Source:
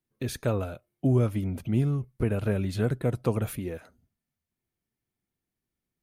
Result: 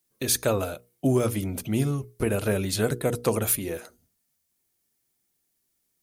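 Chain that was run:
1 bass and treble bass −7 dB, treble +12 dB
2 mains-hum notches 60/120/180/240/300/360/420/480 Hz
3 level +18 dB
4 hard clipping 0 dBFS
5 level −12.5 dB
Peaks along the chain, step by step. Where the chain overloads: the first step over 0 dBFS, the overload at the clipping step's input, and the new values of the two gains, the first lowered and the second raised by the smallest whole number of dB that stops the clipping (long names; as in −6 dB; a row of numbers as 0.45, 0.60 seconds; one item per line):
−14.5, −15.0, +3.0, 0.0, −12.5 dBFS
step 3, 3.0 dB
step 3 +15 dB, step 5 −9.5 dB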